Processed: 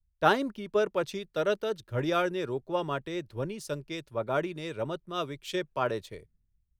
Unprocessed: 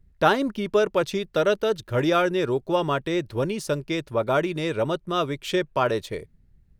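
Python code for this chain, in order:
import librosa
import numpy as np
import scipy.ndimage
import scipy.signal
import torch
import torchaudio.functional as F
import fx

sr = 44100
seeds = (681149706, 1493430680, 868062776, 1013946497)

y = fx.band_widen(x, sr, depth_pct=70)
y = y * 10.0 ** (-7.5 / 20.0)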